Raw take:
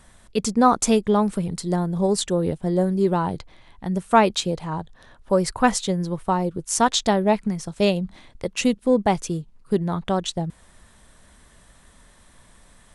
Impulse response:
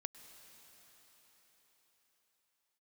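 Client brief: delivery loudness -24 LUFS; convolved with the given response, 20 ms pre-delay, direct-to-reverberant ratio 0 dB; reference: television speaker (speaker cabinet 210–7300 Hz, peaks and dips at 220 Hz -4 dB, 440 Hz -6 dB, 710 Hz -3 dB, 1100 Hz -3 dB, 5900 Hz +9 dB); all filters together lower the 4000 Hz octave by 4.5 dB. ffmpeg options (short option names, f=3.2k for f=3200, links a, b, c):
-filter_complex "[0:a]equalizer=f=4k:t=o:g=-8,asplit=2[a][b];[1:a]atrim=start_sample=2205,adelay=20[c];[b][c]afir=irnorm=-1:irlink=0,volume=3.5dB[d];[a][d]amix=inputs=2:normalize=0,highpass=f=210:w=0.5412,highpass=f=210:w=1.3066,equalizer=f=220:t=q:w=4:g=-4,equalizer=f=440:t=q:w=4:g=-6,equalizer=f=710:t=q:w=4:g=-3,equalizer=f=1.1k:t=q:w=4:g=-3,equalizer=f=5.9k:t=q:w=4:g=9,lowpass=f=7.3k:w=0.5412,lowpass=f=7.3k:w=1.3066,volume=-1.5dB"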